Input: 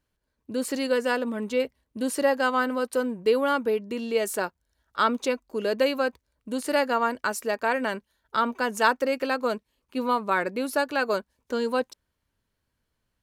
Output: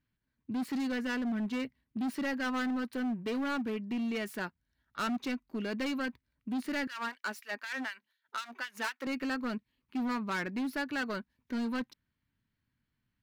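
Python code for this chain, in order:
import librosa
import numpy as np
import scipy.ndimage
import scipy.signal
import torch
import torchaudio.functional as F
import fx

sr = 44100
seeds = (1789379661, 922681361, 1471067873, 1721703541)

y = fx.self_delay(x, sr, depth_ms=0.086)
y = fx.graphic_eq(y, sr, hz=(125, 250, 500, 2000, 4000, 8000), db=(9, 9, -8, 7, 3, -11))
y = np.clip(y, -10.0 ** (-21.5 / 20.0), 10.0 ** (-21.5 / 20.0))
y = fx.filter_lfo_highpass(y, sr, shape='sine', hz=4.0, low_hz=300.0, high_hz=2400.0, q=0.76, at=(6.87, 9.07))
y = y * 10.0 ** (-8.5 / 20.0)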